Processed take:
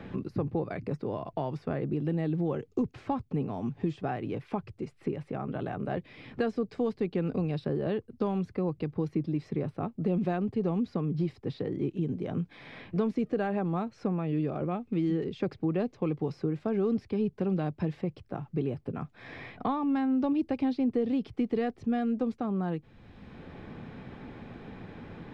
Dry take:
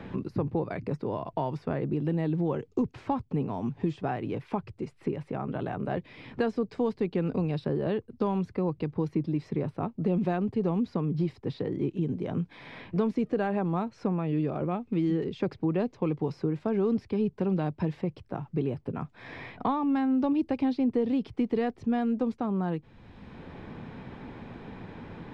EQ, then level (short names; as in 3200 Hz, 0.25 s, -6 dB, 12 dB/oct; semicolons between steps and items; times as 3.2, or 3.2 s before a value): notch 950 Hz, Q 8.8; -1.5 dB